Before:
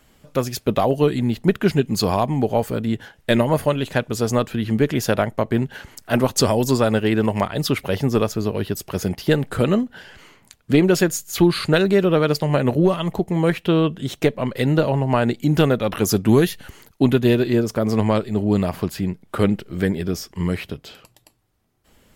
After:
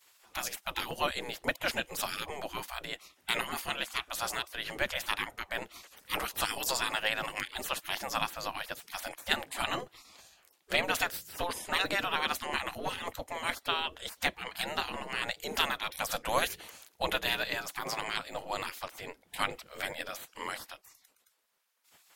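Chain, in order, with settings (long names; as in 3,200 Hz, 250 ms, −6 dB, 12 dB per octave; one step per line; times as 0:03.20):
dynamic equaliser 420 Hz, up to +6 dB, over −35 dBFS, Q 5.9
gate on every frequency bin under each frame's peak −20 dB weak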